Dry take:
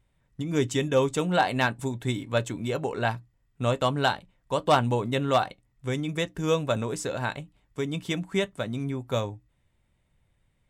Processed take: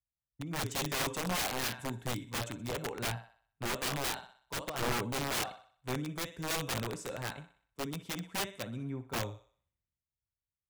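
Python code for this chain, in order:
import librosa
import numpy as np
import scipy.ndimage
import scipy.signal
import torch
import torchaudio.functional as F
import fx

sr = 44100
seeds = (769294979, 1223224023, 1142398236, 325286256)

y = scipy.signal.sosfilt(scipy.signal.butter(2, 56.0, 'highpass', fs=sr, output='sos'), x)
y = fx.low_shelf(y, sr, hz=72.0, db=8.0)
y = fx.over_compress(y, sr, threshold_db=-23.0, ratio=-0.5, at=(4.54, 4.94))
y = fx.echo_thinned(y, sr, ms=62, feedback_pct=57, hz=360.0, wet_db=-11)
y = (np.mod(10.0 ** (20.5 / 20.0) * y + 1.0, 2.0) - 1.0) / 10.0 ** (20.5 / 20.0)
y = fx.band_widen(y, sr, depth_pct=70)
y = F.gain(torch.from_numpy(y), -8.0).numpy()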